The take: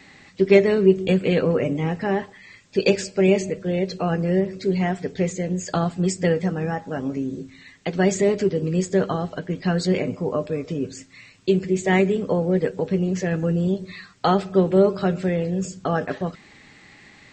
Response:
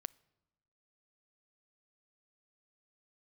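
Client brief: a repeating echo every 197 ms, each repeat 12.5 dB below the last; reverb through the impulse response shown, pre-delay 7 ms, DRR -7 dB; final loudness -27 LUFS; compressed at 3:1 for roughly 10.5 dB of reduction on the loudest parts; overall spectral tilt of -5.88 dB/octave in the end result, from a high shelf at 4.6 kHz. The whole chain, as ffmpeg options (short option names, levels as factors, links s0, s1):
-filter_complex "[0:a]highshelf=f=4600:g=-7,acompressor=threshold=0.0631:ratio=3,aecho=1:1:197|394|591:0.237|0.0569|0.0137,asplit=2[s0][s1];[1:a]atrim=start_sample=2205,adelay=7[s2];[s1][s2]afir=irnorm=-1:irlink=0,volume=3.35[s3];[s0][s3]amix=inputs=2:normalize=0,volume=0.501"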